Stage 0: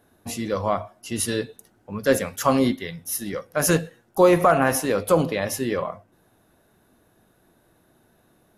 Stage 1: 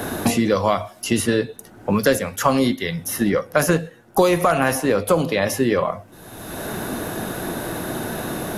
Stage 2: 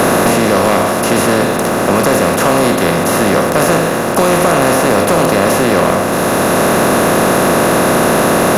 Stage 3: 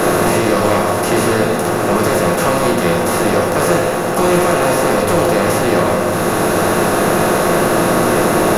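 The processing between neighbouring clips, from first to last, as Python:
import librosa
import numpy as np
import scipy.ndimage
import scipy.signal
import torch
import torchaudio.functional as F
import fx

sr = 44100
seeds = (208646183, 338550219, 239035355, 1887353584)

y1 = fx.band_squash(x, sr, depth_pct=100)
y1 = y1 * librosa.db_to_amplitude(4.0)
y2 = fx.bin_compress(y1, sr, power=0.2)
y2 = fx.leveller(y2, sr, passes=2)
y2 = y2 * librosa.db_to_amplitude(-7.5)
y3 = fx.room_shoebox(y2, sr, seeds[0], volume_m3=34.0, walls='mixed', distance_m=0.55)
y3 = y3 * librosa.db_to_amplitude(-6.0)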